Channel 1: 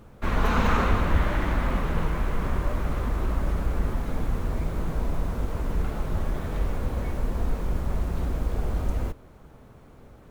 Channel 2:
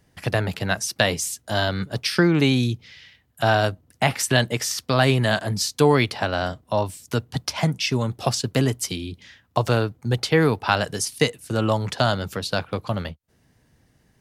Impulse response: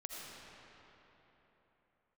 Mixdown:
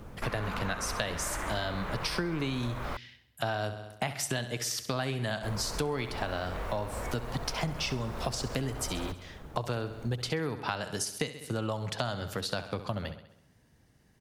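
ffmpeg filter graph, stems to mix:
-filter_complex "[0:a]acrossover=split=500|3000[s0][s1][s2];[s0]acompressor=threshold=0.01:ratio=4[s3];[s1]acompressor=threshold=0.0158:ratio=4[s4];[s2]acompressor=threshold=0.00126:ratio=4[s5];[s3][s4][s5]amix=inputs=3:normalize=0,volume=1.41,asplit=3[s6][s7][s8];[s6]atrim=end=2.97,asetpts=PTS-STARTPTS,afade=t=out:st=2.966:d=0.004:c=hsin[s9];[s7]atrim=start=2.97:end=5.43,asetpts=PTS-STARTPTS,volume=0[s10];[s8]atrim=start=5.43,asetpts=PTS-STARTPTS,afade=t=in:d=0.004:c=hsin[s11];[s9][s10][s11]concat=n=3:v=0:a=1[s12];[1:a]volume=0.631,asplit=2[s13][s14];[s14]volume=0.211,aecho=0:1:66|132|198|264|330|396|462|528:1|0.54|0.292|0.157|0.085|0.0459|0.0248|0.0134[s15];[s12][s13][s15]amix=inputs=3:normalize=0,acompressor=threshold=0.0355:ratio=6"

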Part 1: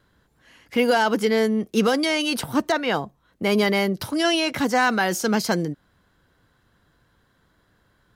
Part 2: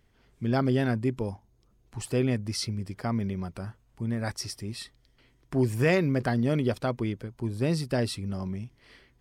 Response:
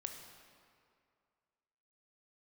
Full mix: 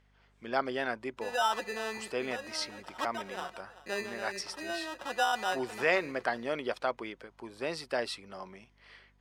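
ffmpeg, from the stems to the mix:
-filter_complex "[0:a]lowpass=f=1200:w=0.5412,lowpass=f=1200:w=1.3066,aecho=1:1:5.5:0.53,acrusher=samples=20:mix=1:aa=0.000001,adelay=450,volume=0.447,asplit=3[s0][s1][s2];[s1]volume=0.15[s3];[s2]volume=0.0841[s4];[1:a]volume=1.26,asplit=2[s5][s6];[s6]apad=whole_len=379611[s7];[s0][s7]sidechaincompress=threshold=0.0158:ratio=4:attack=31:release=193[s8];[2:a]atrim=start_sample=2205[s9];[s3][s9]afir=irnorm=-1:irlink=0[s10];[s4]aecho=0:1:386:1[s11];[s8][s5][s10][s11]amix=inputs=4:normalize=0,highpass=680,aemphasis=mode=reproduction:type=50fm,aeval=exprs='val(0)+0.000501*(sin(2*PI*50*n/s)+sin(2*PI*2*50*n/s)/2+sin(2*PI*3*50*n/s)/3+sin(2*PI*4*50*n/s)/4+sin(2*PI*5*50*n/s)/5)':c=same"

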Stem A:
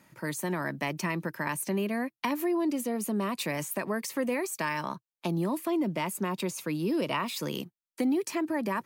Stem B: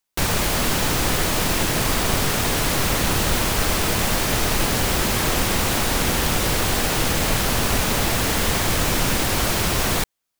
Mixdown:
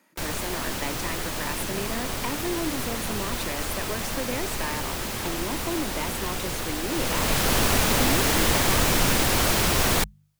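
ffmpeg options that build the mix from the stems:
-filter_complex "[0:a]highpass=f=220:w=0.5412,highpass=f=220:w=1.3066,volume=0.794[s0];[1:a]bandreject=f=50:t=h:w=6,bandreject=f=100:t=h:w=6,bandreject=f=150:t=h:w=6,bandreject=f=200:t=h:w=6,volume=0.944,afade=t=in:st=6.86:d=0.69:silence=0.354813[s1];[s0][s1]amix=inputs=2:normalize=0,bandreject=f=50:t=h:w=6,bandreject=f=100:t=h:w=6,bandreject=f=150:t=h:w=6"

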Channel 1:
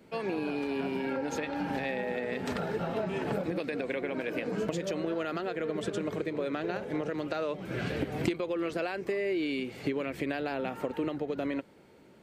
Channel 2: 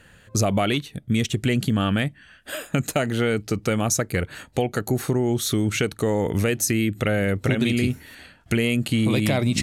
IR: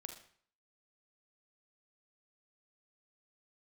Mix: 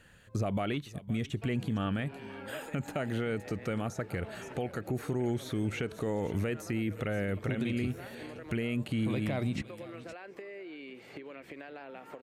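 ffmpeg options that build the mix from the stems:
-filter_complex "[0:a]acrossover=split=3000[s0][s1];[s1]acompressor=threshold=0.00158:ratio=4:attack=1:release=60[s2];[s0][s2]amix=inputs=2:normalize=0,lowshelf=f=300:g=-11,acompressor=threshold=0.0126:ratio=6,adelay=1300,volume=0.631,asplit=2[s3][s4];[s4]volume=0.119[s5];[1:a]volume=0.422,asplit=3[s6][s7][s8];[s7]volume=0.0841[s9];[s8]apad=whole_len=596255[s10];[s3][s10]sidechaincompress=threshold=0.0224:ratio=8:attack=42:release=168[s11];[s5][s9]amix=inputs=2:normalize=0,aecho=0:1:516:1[s12];[s11][s6][s12]amix=inputs=3:normalize=0,acrossover=split=2700[s13][s14];[s14]acompressor=threshold=0.00355:ratio=4:attack=1:release=60[s15];[s13][s15]amix=inputs=2:normalize=0,alimiter=limit=0.0668:level=0:latency=1:release=124"

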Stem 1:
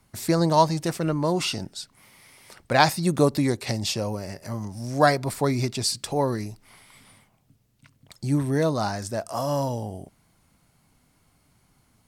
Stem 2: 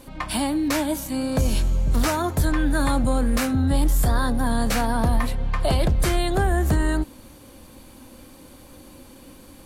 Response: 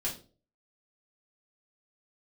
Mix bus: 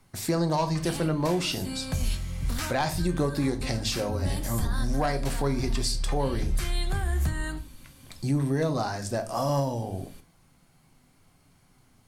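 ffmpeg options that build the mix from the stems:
-filter_complex "[0:a]asoftclip=type=tanh:threshold=0.316,volume=0.841,asplit=3[s0][s1][s2];[s1]volume=0.447[s3];[1:a]equalizer=f=450:w=0.56:g=-13.5,adelay=550,volume=0.562,asplit=2[s4][s5];[s5]volume=0.422[s6];[s2]apad=whole_len=449907[s7];[s4][s7]sidechaincompress=threshold=0.0224:ratio=8:attack=16:release=218[s8];[2:a]atrim=start_sample=2205[s9];[s3][s6]amix=inputs=2:normalize=0[s10];[s10][s9]afir=irnorm=-1:irlink=0[s11];[s0][s8][s11]amix=inputs=3:normalize=0,highshelf=f=9700:g=-3.5,alimiter=limit=0.141:level=0:latency=1:release=329"

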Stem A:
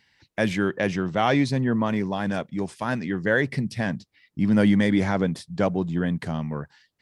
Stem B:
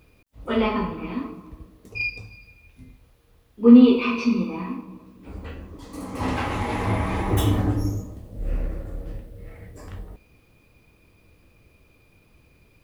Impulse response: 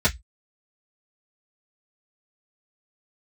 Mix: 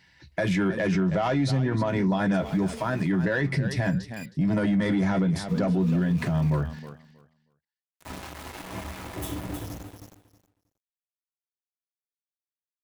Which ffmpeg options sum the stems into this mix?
-filter_complex "[0:a]asoftclip=type=tanh:threshold=0.2,volume=1.41,asplit=4[s0][s1][s2][s3];[s1]volume=0.126[s4];[s2]volume=0.211[s5];[1:a]highpass=72,highshelf=f=6200:g=10.5,aeval=exprs='val(0)*gte(abs(val(0)),0.075)':c=same,adelay=1850,volume=0.237,asplit=3[s6][s7][s8];[s7]volume=0.0708[s9];[s8]volume=0.447[s10];[s3]apad=whole_len=647508[s11];[s6][s11]sidechaincompress=threshold=0.0251:ratio=8:attack=16:release=437[s12];[2:a]atrim=start_sample=2205[s13];[s4][s9]amix=inputs=2:normalize=0[s14];[s14][s13]afir=irnorm=-1:irlink=0[s15];[s5][s10]amix=inputs=2:normalize=0,aecho=0:1:317|634|951:1|0.18|0.0324[s16];[s0][s12][s15][s16]amix=inputs=4:normalize=0,alimiter=limit=0.141:level=0:latency=1:release=67"

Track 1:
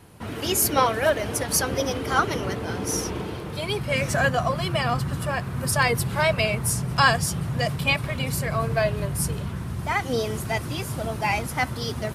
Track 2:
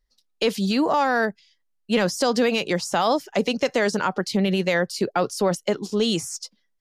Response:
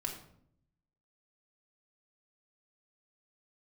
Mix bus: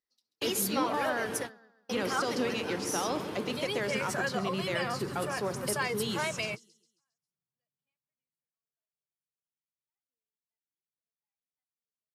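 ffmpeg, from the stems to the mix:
-filter_complex "[0:a]acompressor=threshold=0.0224:ratio=2,volume=0.841,afade=t=out:st=7.9:d=0.58:silence=0.266073[s0];[1:a]volume=0.224,asplit=4[s1][s2][s3][s4];[s2]volume=0.282[s5];[s3]volume=0.299[s6];[s4]apad=whole_len=535656[s7];[s0][s7]sidechaingate=range=0.001:threshold=0.00126:ratio=16:detection=peak[s8];[2:a]atrim=start_sample=2205[s9];[s5][s9]afir=irnorm=-1:irlink=0[s10];[s6]aecho=0:1:135|270|405|540|675|810:1|0.42|0.176|0.0741|0.0311|0.0131[s11];[s8][s1][s10][s11]amix=inputs=4:normalize=0,highpass=190,equalizer=f=660:w=6.2:g=-5"

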